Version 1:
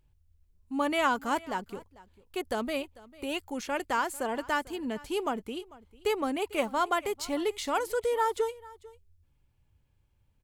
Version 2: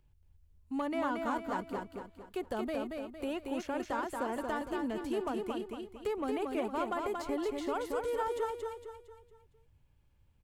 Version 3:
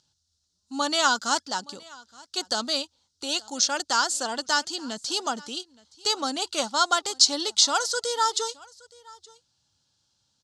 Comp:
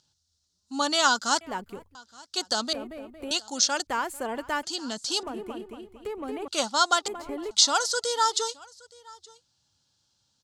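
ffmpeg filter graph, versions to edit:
-filter_complex "[0:a]asplit=2[s0][s1];[1:a]asplit=3[s2][s3][s4];[2:a]asplit=6[s5][s6][s7][s8][s9][s10];[s5]atrim=end=1.412[s11];[s0]atrim=start=1.408:end=1.952[s12];[s6]atrim=start=1.948:end=2.732[s13];[s2]atrim=start=2.728:end=3.312[s14];[s7]atrim=start=3.308:end=3.872[s15];[s1]atrim=start=3.868:end=4.632[s16];[s8]atrim=start=4.628:end=5.232[s17];[s3]atrim=start=5.228:end=6.482[s18];[s9]atrim=start=6.478:end=7.082[s19];[s4]atrim=start=7.078:end=7.512[s20];[s10]atrim=start=7.508[s21];[s11][s12]acrossfade=d=0.004:c1=hsin:c2=hsin[s22];[s22][s13]acrossfade=d=0.004:c1=hsin:c2=hsin[s23];[s23][s14]acrossfade=d=0.004:c1=hsin:c2=hsin[s24];[s24][s15]acrossfade=d=0.004:c1=hsin:c2=hsin[s25];[s25][s16]acrossfade=d=0.004:c1=hsin:c2=hsin[s26];[s26][s17]acrossfade=d=0.004:c1=hsin:c2=hsin[s27];[s27][s18]acrossfade=d=0.004:c1=hsin:c2=hsin[s28];[s28][s19]acrossfade=d=0.004:c1=hsin:c2=hsin[s29];[s29][s20]acrossfade=d=0.004:c1=hsin:c2=hsin[s30];[s30][s21]acrossfade=d=0.004:c1=hsin:c2=hsin"

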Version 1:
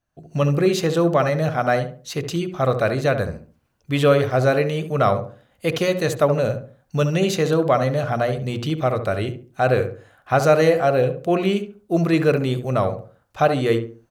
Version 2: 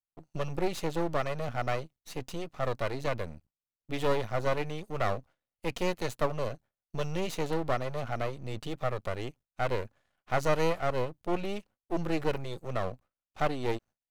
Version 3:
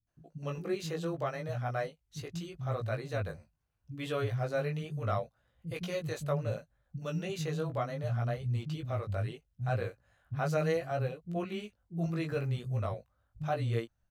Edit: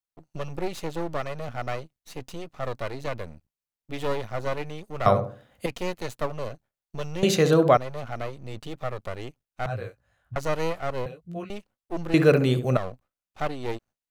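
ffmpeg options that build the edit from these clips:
-filter_complex "[0:a]asplit=3[s0][s1][s2];[2:a]asplit=2[s3][s4];[1:a]asplit=6[s5][s6][s7][s8][s9][s10];[s5]atrim=end=5.062[s11];[s0]atrim=start=5.058:end=5.662[s12];[s6]atrim=start=5.658:end=7.232[s13];[s1]atrim=start=7.228:end=7.772[s14];[s7]atrim=start=7.768:end=9.662[s15];[s3]atrim=start=9.658:end=10.362[s16];[s8]atrim=start=10.358:end=11.062[s17];[s4]atrim=start=11.058:end=11.502[s18];[s9]atrim=start=11.498:end=12.142[s19];[s2]atrim=start=12.138:end=12.772[s20];[s10]atrim=start=12.768[s21];[s11][s12]acrossfade=d=0.004:c1=hsin:c2=hsin[s22];[s22][s13]acrossfade=d=0.004:c1=hsin:c2=hsin[s23];[s23][s14]acrossfade=d=0.004:c1=hsin:c2=hsin[s24];[s24][s15]acrossfade=d=0.004:c1=hsin:c2=hsin[s25];[s25][s16]acrossfade=d=0.004:c1=hsin:c2=hsin[s26];[s26][s17]acrossfade=d=0.004:c1=hsin:c2=hsin[s27];[s27][s18]acrossfade=d=0.004:c1=hsin:c2=hsin[s28];[s28][s19]acrossfade=d=0.004:c1=hsin:c2=hsin[s29];[s29][s20]acrossfade=d=0.004:c1=hsin:c2=hsin[s30];[s30][s21]acrossfade=d=0.004:c1=hsin:c2=hsin"

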